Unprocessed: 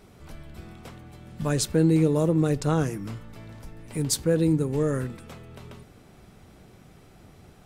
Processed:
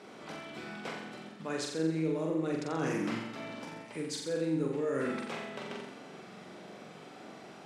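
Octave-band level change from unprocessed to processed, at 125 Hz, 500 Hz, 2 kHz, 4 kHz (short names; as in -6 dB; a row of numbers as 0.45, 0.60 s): -15.0, -7.0, 0.0, -6.0 dB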